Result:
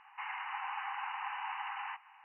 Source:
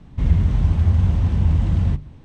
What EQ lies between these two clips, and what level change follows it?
linear-phase brick-wall band-pass 750–3,000 Hz
high-frequency loss of the air 170 metres
notch filter 1,400 Hz, Q 29
+5.5 dB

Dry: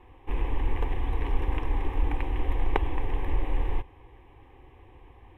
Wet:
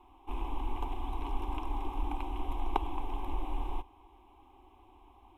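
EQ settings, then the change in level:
low-shelf EQ 320 Hz −9 dB
phaser with its sweep stopped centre 490 Hz, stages 6
+1.0 dB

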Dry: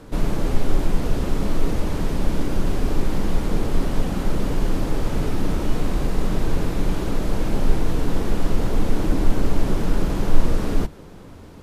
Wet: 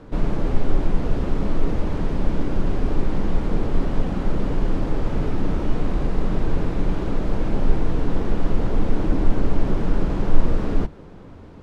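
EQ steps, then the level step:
high-frequency loss of the air 59 metres
high-shelf EQ 3,300 Hz −8.5 dB
0.0 dB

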